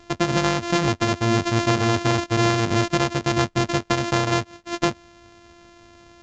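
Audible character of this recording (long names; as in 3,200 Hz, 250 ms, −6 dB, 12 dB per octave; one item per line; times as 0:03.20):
a buzz of ramps at a fixed pitch in blocks of 128 samples
A-law companding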